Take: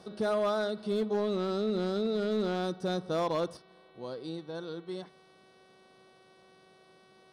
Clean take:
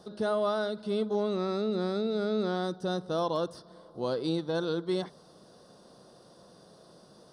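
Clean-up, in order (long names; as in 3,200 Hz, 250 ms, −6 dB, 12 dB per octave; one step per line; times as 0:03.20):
clipped peaks rebuilt −23.5 dBFS
hum removal 377 Hz, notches 11
level 0 dB, from 0:03.57 +9 dB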